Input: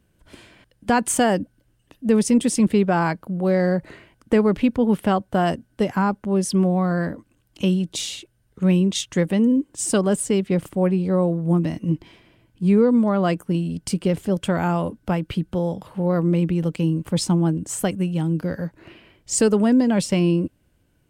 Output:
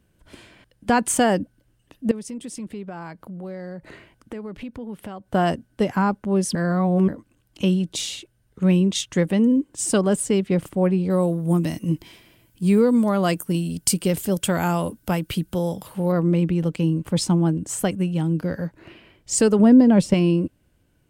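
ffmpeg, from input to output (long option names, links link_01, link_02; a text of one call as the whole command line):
ffmpeg -i in.wav -filter_complex "[0:a]asettb=1/sr,asplit=3[link_01][link_02][link_03];[link_01]atrim=end=2.114[link_04];[link_02]atrim=start=2.11:end=5.28,asetpts=PTS-STARTPTS,afade=type=in:duration=0.004:curve=qsin,afade=type=out:start_time=3.166:duration=0.004:curve=qsin,acompressor=threshold=-36dB:ratio=3:attack=3.2:release=140:knee=1:detection=peak[link_05];[link_03]atrim=start=5.276[link_06];[link_04][link_05]acrossfade=duration=0.004:curve1=hsin:curve2=qsin[link_07];[link_07][link_06]acrossfade=duration=0.004:curve1=qsin:curve2=hsin,asettb=1/sr,asplit=3[link_08][link_09][link_10];[link_08]atrim=end=11.104[link_11];[link_09]atrim=start=11.1:end=16.12,asetpts=PTS-STARTPTS,afade=type=in:duration=0.004:curve=qsin,afade=type=out:start_time=5.016:duration=0.004:curve=qsin,aemphasis=mode=production:type=75fm[link_12];[link_10]atrim=start=16.116[link_13];[link_11][link_12]acrossfade=duration=0.004:curve1=hsin:curve2=qsin[link_14];[link_14][link_13]acrossfade=duration=0.004:curve1=qsin:curve2=hsin,asettb=1/sr,asplit=3[link_15][link_16][link_17];[link_15]atrim=end=19.594[link_18];[link_16]atrim=start=19.59:end=20.14,asetpts=PTS-STARTPTS,afade=type=in:duration=0.004:curve=qsin,afade=type=out:start_time=0.546:duration=0.004:curve=qsin,tiltshelf=frequency=1100:gain=5[link_19];[link_17]atrim=start=20.136[link_20];[link_18][link_19]acrossfade=duration=0.004:curve1=hsin:curve2=qsin[link_21];[link_21][link_20]acrossfade=duration=0.004:curve1=qsin:curve2=hsin,asplit=3[link_22][link_23][link_24];[link_22]atrim=end=6.552[link_25];[link_23]atrim=start=6.548:end=7.082,asetpts=PTS-STARTPTS,areverse[link_26];[link_24]atrim=start=7.078[link_27];[link_25][link_26]acrossfade=duration=0.004:curve1=hsin:curve2=hsin[link_28];[link_28][link_27]acrossfade=duration=0.004:curve1=hsin:curve2=hsin" out.wav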